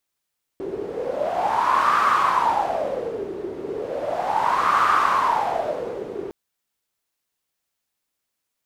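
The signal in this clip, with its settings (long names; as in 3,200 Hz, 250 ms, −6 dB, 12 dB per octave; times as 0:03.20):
wind from filtered noise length 5.71 s, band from 380 Hz, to 1,200 Hz, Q 7.8, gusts 2, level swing 12 dB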